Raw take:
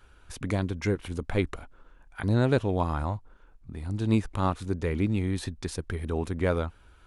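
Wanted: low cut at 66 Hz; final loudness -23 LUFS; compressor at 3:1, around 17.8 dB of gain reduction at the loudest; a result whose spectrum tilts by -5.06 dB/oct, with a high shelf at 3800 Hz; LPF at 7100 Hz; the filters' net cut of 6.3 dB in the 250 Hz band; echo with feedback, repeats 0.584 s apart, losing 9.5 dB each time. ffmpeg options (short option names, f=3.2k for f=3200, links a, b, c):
-af "highpass=66,lowpass=7.1k,equalizer=f=250:t=o:g=-8.5,highshelf=f=3.8k:g=8.5,acompressor=threshold=-47dB:ratio=3,aecho=1:1:584|1168|1752|2336:0.335|0.111|0.0365|0.012,volume=23.5dB"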